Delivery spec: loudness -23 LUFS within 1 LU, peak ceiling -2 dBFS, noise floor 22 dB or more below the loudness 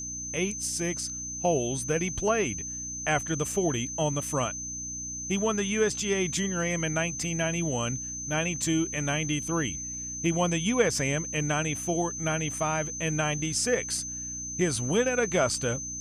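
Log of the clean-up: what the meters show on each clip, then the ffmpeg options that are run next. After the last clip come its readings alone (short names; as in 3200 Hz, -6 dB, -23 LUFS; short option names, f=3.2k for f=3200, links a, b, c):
hum 60 Hz; harmonics up to 300 Hz; hum level -43 dBFS; steady tone 6200 Hz; tone level -34 dBFS; loudness -28.0 LUFS; peak -10.0 dBFS; loudness target -23.0 LUFS
-> -af "bandreject=f=60:t=h:w=4,bandreject=f=120:t=h:w=4,bandreject=f=180:t=h:w=4,bandreject=f=240:t=h:w=4,bandreject=f=300:t=h:w=4"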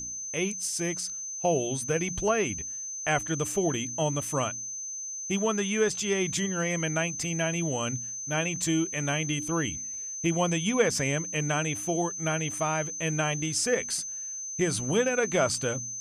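hum none; steady tone 6200 Hz; tone level -34 dBFS
-> -af "bandreject=f=6.2k:w=30"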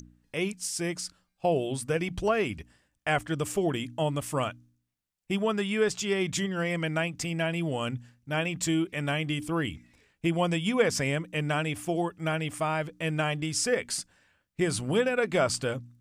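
steady tone none; loudness -29.5 LUFS; peak -11.0 dBFS; loudness target -23.0 LUFS
-> -af "volume=6.5dB"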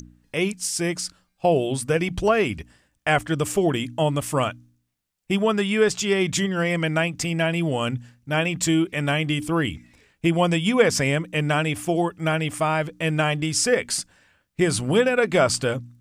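loudness -23.0 LUFS; peak -4.5 dBFS; noise floor -71 dBFS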